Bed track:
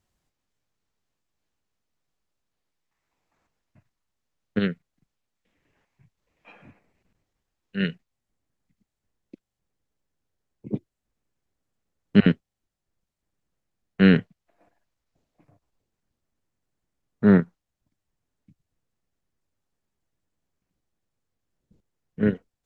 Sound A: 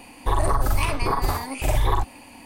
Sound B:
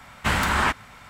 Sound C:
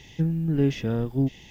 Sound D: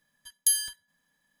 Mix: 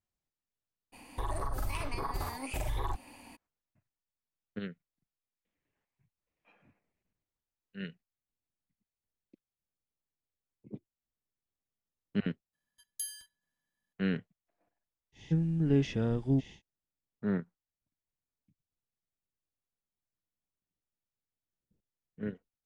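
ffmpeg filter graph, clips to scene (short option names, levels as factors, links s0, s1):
-filter_complex "[0:a]volume=0.168[s0];[1:a]alimiter=limit=0.141:level=0:latency=1:release=270[s1];[3:a]aresample=22050,aresample=44100[s2];[s1]atrim=end=2.45,asetpts=PTS-STARTPTS,volume=0.398,afade=t=in:d=0.02,afade=t=out:st=2.43:d=0.02,adelay=920[s3];[4:a]atrim=end=1.4,asetpts=PTS-STARTPTS,volume=0.168,afade=t=in:d=0.004:c=hsin,afade=t=out:st=1.396:d=0.004:c=hsin,adelay=12530[s4];[s2]atrim=end=1.5,asetpts=PTS-STARTPTS,volume=0.596,afade=t=in:d=0.1,afade=t=out:st=1.4:d=0.1,adelay=15120[s5];[s0][s3][s4][s5]amix=inputs=4:normalize=0"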